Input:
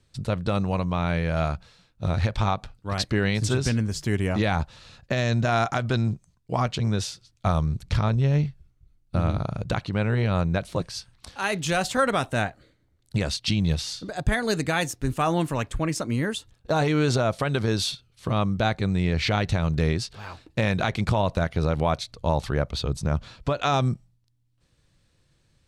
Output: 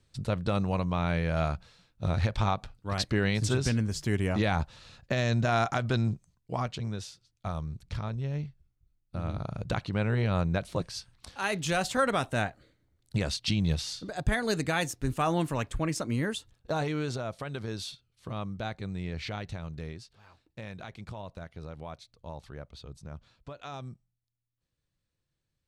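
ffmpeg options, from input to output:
-af "volume=4dB,afade=t=out:st=6.07:d=0.93:silence=0.398107,afade=t=in:st=9.16:d=0.6:silence=0.421697,afade=t=out:st=16.31:d=0.85:silence=0.398107,afade=t=out:st=19.16:d=0.9:silence=0.473151"

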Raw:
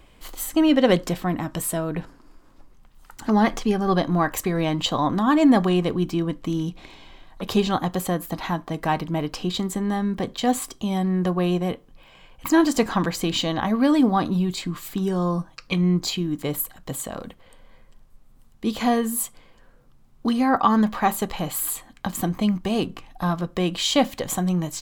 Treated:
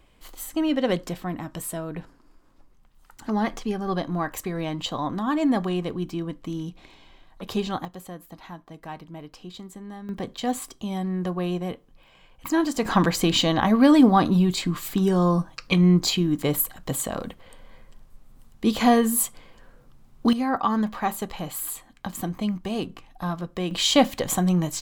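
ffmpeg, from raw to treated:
-af "asetnsamples=n=441:p=0,asendcmd='7.85 volume volume -14.5dB;10.09 volume volume -5dB;12.85 volume volume 3dB;20.33 volume volume -5dB;23.71 volume volume 1.5dB',volume=-6dB"

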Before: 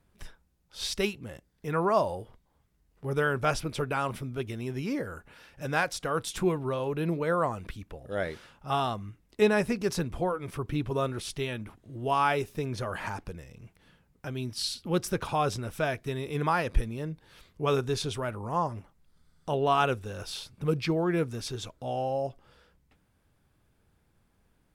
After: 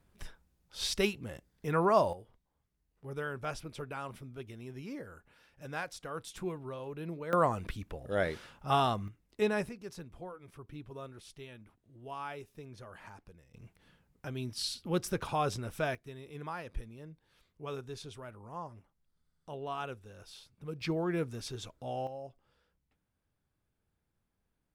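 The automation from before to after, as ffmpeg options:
-af "asetnsamples=n=441:p=0,asendcmd='2.13 volume volume -11dB;7.33 volume volume 0.5dB;9.08 volume volume -7dB;9.69 volume volume -16dB;13.54 volume volume -4dB;15.95 volume volume -14dB;20.81 volume volume -5.5dB;22.07 volume volume -13.5dB',volume=-1dB"

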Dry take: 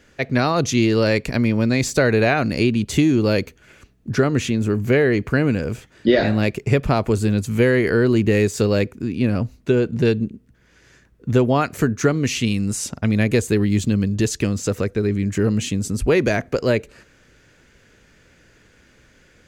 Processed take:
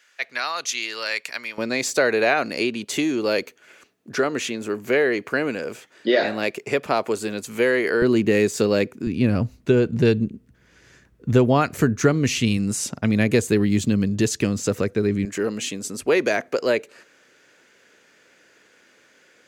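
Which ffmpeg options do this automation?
-af "asetnsamples=n=441:p=0,asendcmd='1.58 highpass f 400;8.02 highpass f 190;9.07 highpass f 54;12.57 highpass f 120;15.25 highpass f 360',highpass=1.3k"

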